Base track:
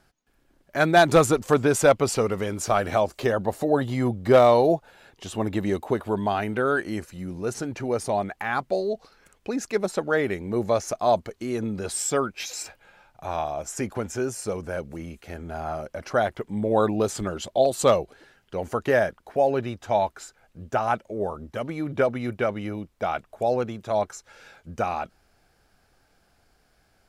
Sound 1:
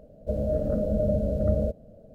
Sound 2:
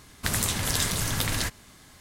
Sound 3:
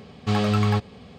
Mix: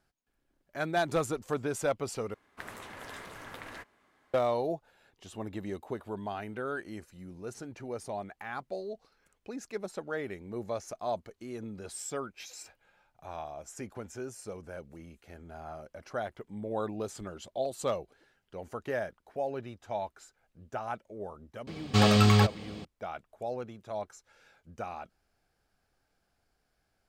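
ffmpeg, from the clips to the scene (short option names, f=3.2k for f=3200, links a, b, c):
-filter_complex "[0:a]volume=-12.5dB[a];[2:a]acrossover=split=290 2400:gain=0.141 1 0.112[b][c][d];[b][c][d]amix=inputs=3:normalize=0[e];[3:a]highshelf=f=3.4k:g=9[f];[a]asplit=2[g][h];[g]atrim=end=2.344[i];[e]atrim=end=2,asetpts=PTS-STARTPTS,volume=-10dB[j];[h]atrim=start=4.336[k];[f]atrim=end=1.18,asetpts=PTS-STARTPTS,volume=-0.5dB,afade=t=in:d=0.004:c=hsin,afade=t=out:st=1.176:d=0.004:c=hsin,adelay=21670[l];[i][j]acrossfade=d=0.004:c1=hsin:c2=hsin[m];[m][k]acrossfade=d=0.004:c1=hsin:c2=hsin[n];[n][l]amix=inputs=2:normalize=0"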